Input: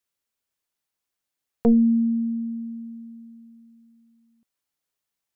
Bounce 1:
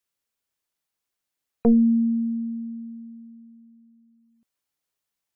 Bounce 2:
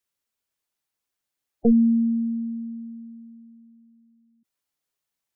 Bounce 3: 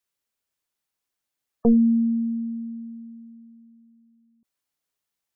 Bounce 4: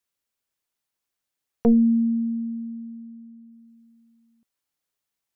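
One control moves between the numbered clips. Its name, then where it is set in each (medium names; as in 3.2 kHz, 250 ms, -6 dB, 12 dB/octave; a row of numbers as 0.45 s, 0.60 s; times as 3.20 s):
spectral gate, under each frame's peak: -45 dB, -15 dB, -30 dB, -60 dB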